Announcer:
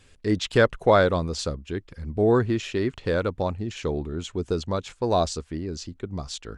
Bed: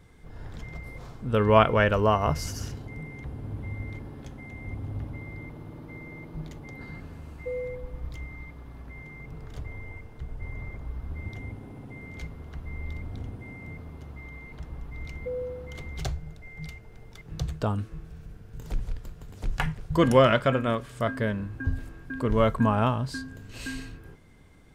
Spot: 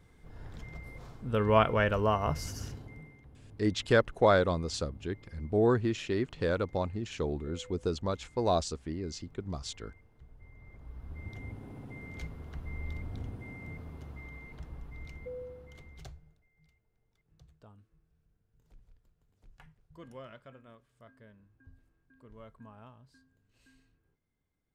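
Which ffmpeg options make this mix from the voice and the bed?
-filter_complex "[0:a]adelay=3350,volume=-5.5dB[a];[1:a]volume=9dB,afade=t=out:st=2.72:d=0.49:silence=0.251189,afade=t=in:st=10.59:d=1.13:silence=0.188365,afade=t=out:st=14.04:d=2.44:silence=0.0501187[b];[a][b]amix=inputs=2:normalize=0"

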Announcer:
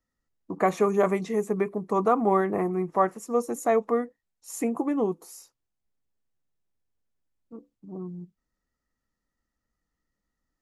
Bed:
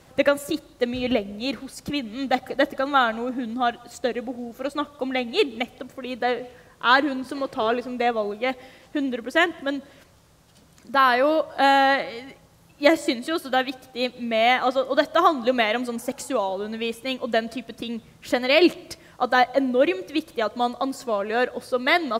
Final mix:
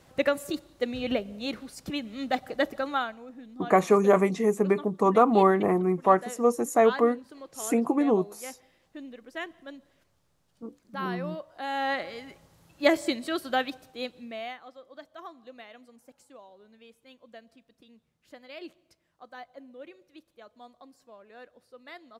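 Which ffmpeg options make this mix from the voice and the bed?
-filter_complex "[0:a]adelay=3100,volume=2.5dB[a];[1:a]volume=7dB,afade=t=out:st=2.81:d=0.35:silence=0.266073,afade=t=in:st=11.66:d=0.52:silence=0.237137,afade=t=out:st=13.54:d=1.05:silence=0.0841395[b];[a][b]amix=inputs=2:normalize=0"

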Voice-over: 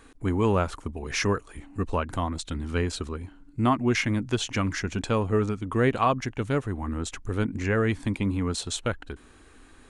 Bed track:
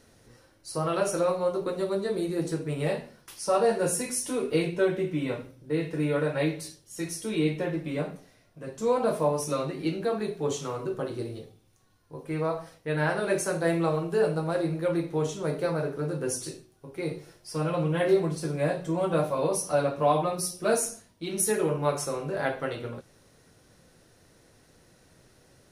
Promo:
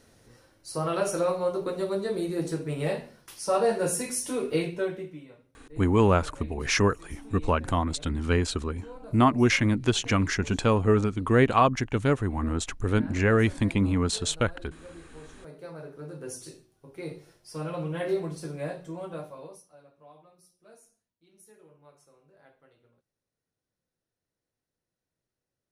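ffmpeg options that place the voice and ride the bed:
-filter_complex "[0:a]adelay=5550,volume=2.5dB[a];[1:a]volume=14.5dB,afade=t=out:st=4.5:d=0.77:silence=0.1,afade=t=in:st=15.33:d=1.45:silence=0.177828,afade=t=out:st=18.43:d=1.27:silence=0.0595662[b];[a][b]amix=inputs=2:normalize=0"

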